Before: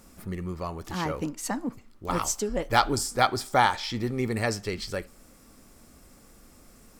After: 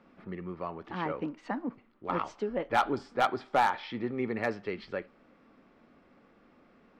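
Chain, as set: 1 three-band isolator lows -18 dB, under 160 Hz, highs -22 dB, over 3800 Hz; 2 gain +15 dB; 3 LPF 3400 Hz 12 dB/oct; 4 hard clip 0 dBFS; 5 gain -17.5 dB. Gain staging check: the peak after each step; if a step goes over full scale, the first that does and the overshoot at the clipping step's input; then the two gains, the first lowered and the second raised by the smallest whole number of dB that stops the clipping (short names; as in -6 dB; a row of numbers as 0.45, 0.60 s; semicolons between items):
-5.5, +9.5, +9.0, 0.0, -17.5 dBFS; step 2, 9.0 dB; step 2 +6 dB, step 5 -8.5 dB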